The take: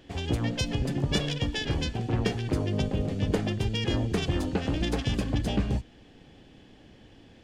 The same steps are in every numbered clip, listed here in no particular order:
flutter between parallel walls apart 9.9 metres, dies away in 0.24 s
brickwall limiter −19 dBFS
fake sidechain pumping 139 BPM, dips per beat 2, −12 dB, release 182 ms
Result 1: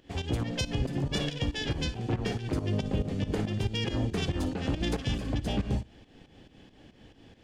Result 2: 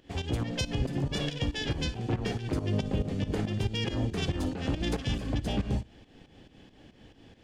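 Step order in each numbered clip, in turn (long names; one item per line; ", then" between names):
flutter between parallel walls, then fake sidechain pumping, then brickwall limiter
brickwall limiter, then flutter between parallel walls, then fake sidechain pumping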